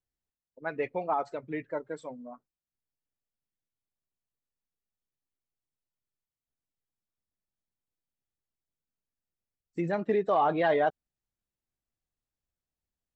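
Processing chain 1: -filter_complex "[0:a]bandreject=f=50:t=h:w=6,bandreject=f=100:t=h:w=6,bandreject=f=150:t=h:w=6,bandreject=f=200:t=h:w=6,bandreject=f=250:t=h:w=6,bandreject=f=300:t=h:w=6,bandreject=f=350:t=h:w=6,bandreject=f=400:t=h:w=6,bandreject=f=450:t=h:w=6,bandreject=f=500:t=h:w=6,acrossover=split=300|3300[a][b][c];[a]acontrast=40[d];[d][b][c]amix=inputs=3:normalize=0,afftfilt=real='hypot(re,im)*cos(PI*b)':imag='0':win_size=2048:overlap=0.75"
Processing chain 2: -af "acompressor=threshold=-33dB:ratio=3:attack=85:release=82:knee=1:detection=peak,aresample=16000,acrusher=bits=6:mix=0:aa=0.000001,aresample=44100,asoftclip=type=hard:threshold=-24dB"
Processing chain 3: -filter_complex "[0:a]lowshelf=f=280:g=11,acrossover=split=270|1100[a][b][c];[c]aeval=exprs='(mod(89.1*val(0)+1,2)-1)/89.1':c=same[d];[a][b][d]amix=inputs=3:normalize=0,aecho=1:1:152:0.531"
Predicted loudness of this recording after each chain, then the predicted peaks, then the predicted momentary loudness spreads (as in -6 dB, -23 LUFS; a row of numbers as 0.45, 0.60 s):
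-32.0, -33.5, -27.0 LUFS; -13.0, -24.0, -11.5 dBFS; 18, 12, 16 LU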